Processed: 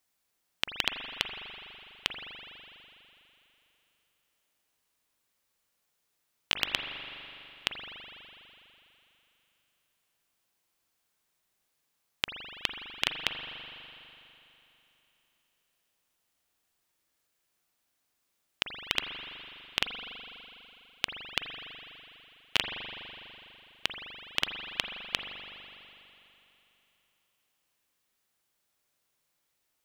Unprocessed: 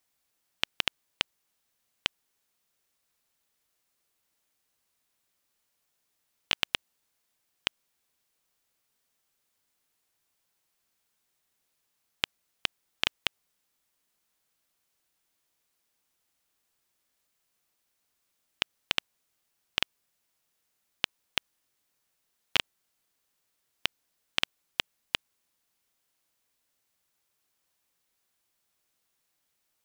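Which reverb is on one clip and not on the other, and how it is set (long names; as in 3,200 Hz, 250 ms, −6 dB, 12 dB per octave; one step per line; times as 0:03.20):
spring reverb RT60 3.2 s, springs 41 ms, chirp 45 ms, DRR 4 dB
level −1 dB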